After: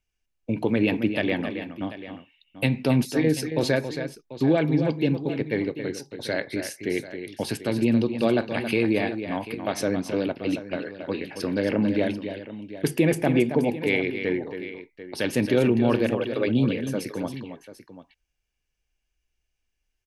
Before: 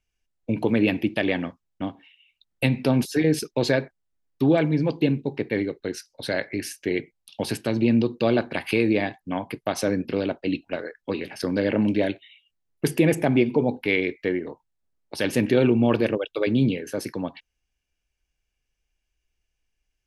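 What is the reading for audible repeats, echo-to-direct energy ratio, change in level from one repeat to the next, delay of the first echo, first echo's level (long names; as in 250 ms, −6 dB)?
2, −8.0 dB, repeats not evenly spaced, 273 ms, −9.0 dB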